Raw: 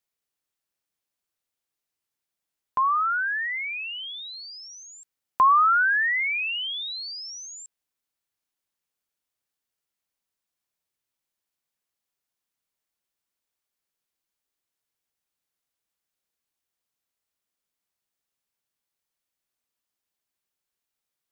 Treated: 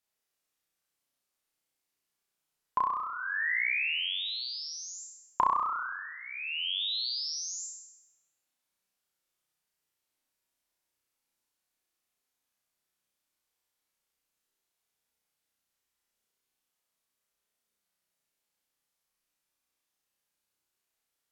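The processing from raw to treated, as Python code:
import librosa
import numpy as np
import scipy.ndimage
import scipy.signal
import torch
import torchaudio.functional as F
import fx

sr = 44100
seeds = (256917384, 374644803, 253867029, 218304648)

y = fx.peak_eq(x, sr, hz=95.0, db=-3.5, octaves=0.92)
y = fx.env_lowpass_down(y, sr, base_hz=490.0, full_db=-22.0)
y = fx.room_flutter(y, sr, wall_m=5.6, rt60_s=0.95)
y = y * librosa.db_to_amplitude(-1.5)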